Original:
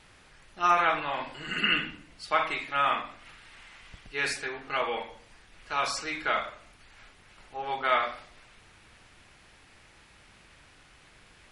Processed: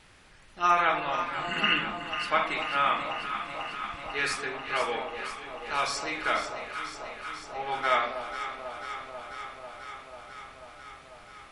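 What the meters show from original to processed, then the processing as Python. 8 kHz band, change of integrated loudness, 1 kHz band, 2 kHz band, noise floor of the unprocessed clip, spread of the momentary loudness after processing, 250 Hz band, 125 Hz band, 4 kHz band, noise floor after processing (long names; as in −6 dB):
+1.0 dB, −1.0 dB, +1.0 dB, +1.0 dB, −57 dBFS, 19 LU, +1.5 dB, +1.0 dB, +1.0 dB, −52 dBFS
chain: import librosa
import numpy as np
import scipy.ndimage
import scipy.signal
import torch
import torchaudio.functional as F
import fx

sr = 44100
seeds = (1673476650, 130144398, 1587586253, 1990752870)

y = x + fx.echo_alternate(x, sr, ms=246, hz=1000.0, feedback_pct=87, wet_db=-8.0, dry=0)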